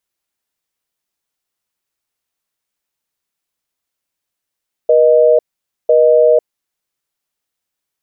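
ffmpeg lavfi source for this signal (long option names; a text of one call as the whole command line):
ffmpeg -f lavfi -i "aevalsrc='0.355*(sin(2*PI*480*t)+sin(2*PI*620*t))*clip(min(mod(t,1),0.5-mod(t,1))/0.005,0,1)':duration=1.83:sample_rate=44100" out.wav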